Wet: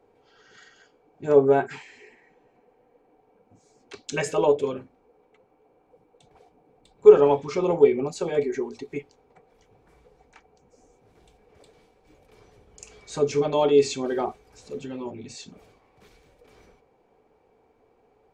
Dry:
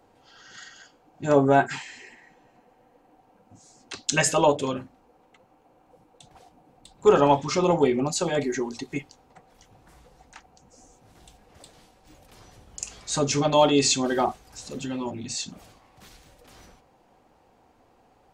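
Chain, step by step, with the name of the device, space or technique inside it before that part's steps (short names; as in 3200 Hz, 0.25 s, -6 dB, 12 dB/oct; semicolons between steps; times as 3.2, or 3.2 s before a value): inside a helmet (high shelf 4100 Hz -8.5 dB; small resonant body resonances 430/2300 Hz, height 13 dB, ringing for 45 ms); gain -5.5 dB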